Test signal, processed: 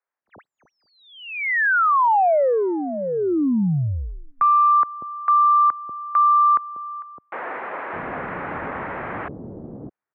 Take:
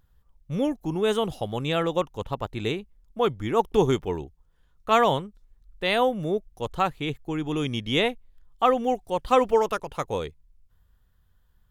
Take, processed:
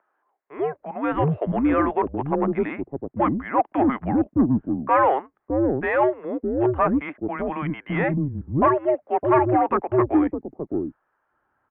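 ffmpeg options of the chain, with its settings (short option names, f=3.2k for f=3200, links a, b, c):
-filter_complex "[0:a]acrossover=split=530[a][b];[a]adelay=610[c];[c][b]amix=inputs=2:normalize=0,asplit=2[d][e];[e]highpass=f=720:p=1,volume=20dB,asoftclip=type=tanh:threshold=-6.5dB[f];[d][f]amix=inputs=2:normalize=0,lowpass=f=1.3k:p=1,volume=-6dB,highpass=f=240:t=q:w=0.5412,highpass=f=240:t=q:w=1.307,lowpass=f=2.2k:t=q:w=0.5176,lowpass=f=2.2k:t=q:w=0.7071,lowpass=f=2.2k:t=q:w=1.932,afreqshift=-140"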